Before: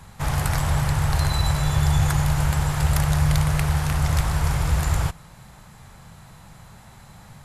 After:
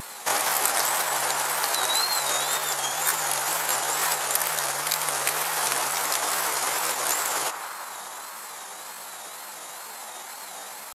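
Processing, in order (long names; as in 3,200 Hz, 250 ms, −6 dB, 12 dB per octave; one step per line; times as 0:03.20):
tempo change 0.68×
in parallel at −2.5 dB: brickwall limiter −18 dBFS, peak gain reduction 10 dB
on the sum: high-shelf EQ 4,700 Hz +11 dB
downward compressor, threshold −20 dBFS, peak gain reduction 8.5 dB
high-pass filter 350 Hz 24 dB per octave
on a send: feedback echo with a band-pass in the loop 176 ms, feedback 80%, band-pass 1,100 Hz, level −7.5 dB
on the sum: tape wow and flutter 110 cents
level +4 dB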